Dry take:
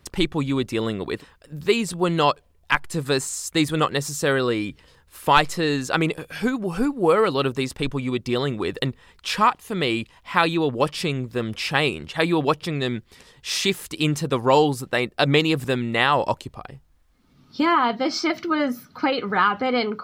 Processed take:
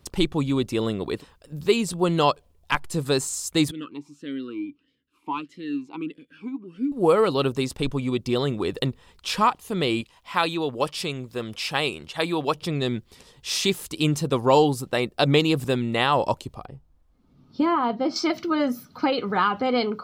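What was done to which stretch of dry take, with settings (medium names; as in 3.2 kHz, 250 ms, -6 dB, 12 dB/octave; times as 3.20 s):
3.71–6.92 s: talking filter i-u 1.6 Hz
10.01–12.55 s: bass shelf 440 Hz -8 dB
16.65–18.16 s: treble shelf 2.1 kHz -11.5 dB
whole clip: peaking EQ 1.8 kHz -6.5 dB 0.97 oct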